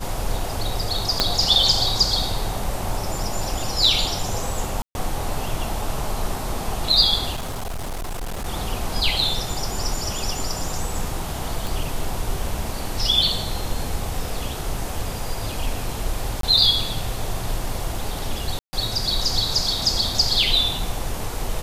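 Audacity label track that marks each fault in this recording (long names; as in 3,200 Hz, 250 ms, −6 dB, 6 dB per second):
1.200000	1.200000	click −2 dBFS
4.820000	4.950000	drop-out 131 ms
7.350000	8.470000	clipping −25 dBFS
11.670000	11.670000	click
16.410000	16.430000	drop-out 23 ms
18.590000	18.730000	drop-out 140 ms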